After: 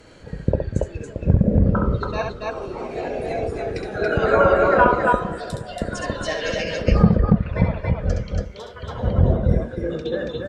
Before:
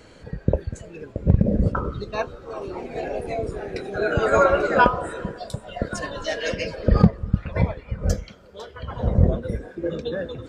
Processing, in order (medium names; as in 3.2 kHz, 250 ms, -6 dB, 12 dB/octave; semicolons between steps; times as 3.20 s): low-pass that closes with the level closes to 1.7 kHz, closed at -12.5 dBFS; loudspeakers at several distances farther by 23 m -5 dB, 96 m -2 dB